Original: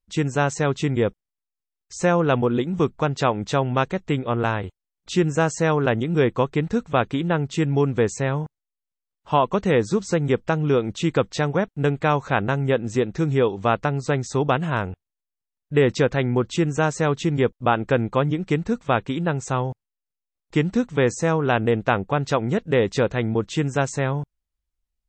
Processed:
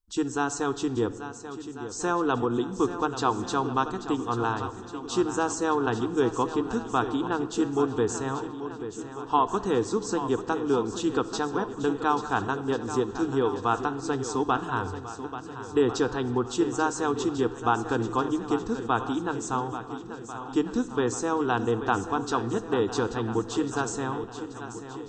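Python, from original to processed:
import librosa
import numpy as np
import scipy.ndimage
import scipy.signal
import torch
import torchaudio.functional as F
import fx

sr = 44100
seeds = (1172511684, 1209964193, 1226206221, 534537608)

y = fx.peak_eq(x, sr, hz=410.0, db=-2.5, octaves=2.3)
y = fx.fixed_phaser(y, sr, hz=580.0, stages=6)
y = fx.echo_swing(y, sr, ms=1393, ratio=1.5, feedback_pct=44, wet_db=-11.5)
y = fx.room_shoebox(y, sr, seeds[0], volume_m3=2200.0, walls='mixed', distance_m=0.49)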